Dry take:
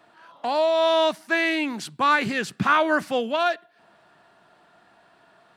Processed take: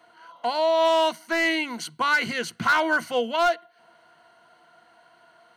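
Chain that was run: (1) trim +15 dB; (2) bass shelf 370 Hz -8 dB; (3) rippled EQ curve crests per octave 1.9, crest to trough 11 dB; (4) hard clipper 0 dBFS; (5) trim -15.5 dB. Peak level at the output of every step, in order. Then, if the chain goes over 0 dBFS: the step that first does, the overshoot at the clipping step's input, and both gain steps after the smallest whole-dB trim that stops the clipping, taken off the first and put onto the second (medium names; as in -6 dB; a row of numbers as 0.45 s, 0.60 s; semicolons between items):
+7.5 dBFS, +6.5 dBFS, +8.0 dBFS, 0.0 dBFS, -15.5 dBFS; step 1, 8.0 dB; step 1 +7 dB, step 5 -7.5 dB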